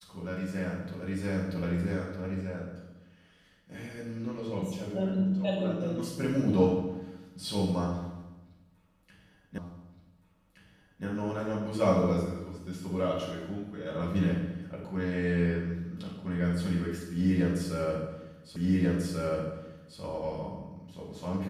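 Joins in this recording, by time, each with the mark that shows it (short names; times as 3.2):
9.58 repeat of the last 1.47 s
18.56 repeat of the last 1.44 s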